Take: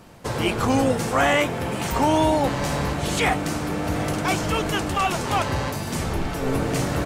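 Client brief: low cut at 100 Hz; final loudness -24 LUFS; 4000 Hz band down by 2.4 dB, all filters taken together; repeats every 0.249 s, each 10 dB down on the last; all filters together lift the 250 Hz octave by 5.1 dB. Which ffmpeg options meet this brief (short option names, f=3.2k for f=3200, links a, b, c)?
-af "highpass=100,equalizer=f=250:t=o:g=6.5,equalizer=f=4k:t=o:g=-3.5,aecho=1:1:249|498|747|996:0.316|0.101|0.0324|0.0104,volume=-3dB"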